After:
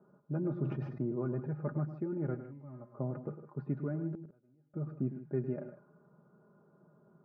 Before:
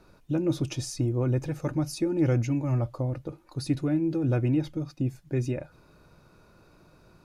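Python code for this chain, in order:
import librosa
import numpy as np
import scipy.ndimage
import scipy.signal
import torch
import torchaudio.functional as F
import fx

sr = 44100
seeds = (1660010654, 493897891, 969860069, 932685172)

y = scipy.signal.sosfilt(scipy.signal.cheby1(3, 1.0, [140.0, 1500.0], 'bandpass', fs=sr, output='sos'), x)
y = fx.env_lowpass(y, sr, base_hz=1000.0, full_db=-25.5)
y = fx.low_shelf(y, sr, hz=170.0, db=6.0)
y = y + 0.65 * np.pad(y, (int(4.9 * sr / 1000.0), 0))[:len(y)]
y = fx.rider(y, sr, range_db=3, speed_s=0.5)
y = fx.comb_fb(y, sr, f0_hz=260.0, decay_s=1.3, harmonics='all', damping=0.0, mix_pct=80, at=(2.34, 2.95), fade=0.02)
y = fx.gate_flip(y, sr, shuts_db=-24.0, range_db=-33, at=(4.12, 4.74))
y = fx.echo_multitap(y, sr, ms=(105, 156), db=(-12.0, -14.0))
y = fx.sustainer(y, sr, db_per_s=62.0, at=(0.62, 1.4))
y = y * librosa.db_to_amplitude(-8.5)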